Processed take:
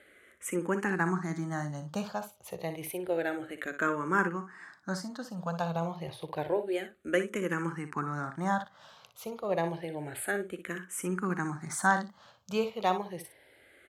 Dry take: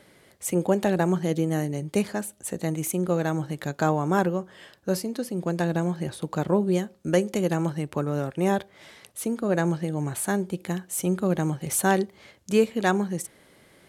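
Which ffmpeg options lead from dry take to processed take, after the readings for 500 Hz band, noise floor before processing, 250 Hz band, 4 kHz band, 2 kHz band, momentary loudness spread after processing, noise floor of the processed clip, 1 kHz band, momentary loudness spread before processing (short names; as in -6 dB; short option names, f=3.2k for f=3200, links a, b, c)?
-7.5 dB, -58 dBFS, -9.5 dB, -6.0 dB, 0.0 dB, 11 LU, -61 dBFS, -2.5 dB, 8 LU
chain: -filter_complex "[0:a]equalizer=f=1.4k:t=o:w=2:g=12,asplit=2[a][b];[b]aecho=0:1:42|60:0.106|0.299[c];[a][c]amix=inputs=2:normalize=0,asplit=2[d][e];[e]afreqshift=-0.29[f];[d][f]amix=inputs=2:normalize=1,volume=-8dB"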